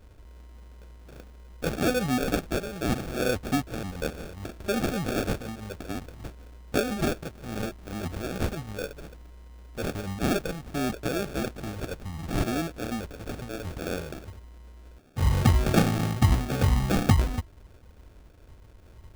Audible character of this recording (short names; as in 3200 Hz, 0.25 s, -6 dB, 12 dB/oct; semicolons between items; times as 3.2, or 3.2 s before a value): a quantiser's noise floor 10-bit, dither triangular; phasing stages 6, 0.65 Hz, lowest notch 280–1900 Hz; aliases and images of a low sample rate 1000 Hz, jitter 0%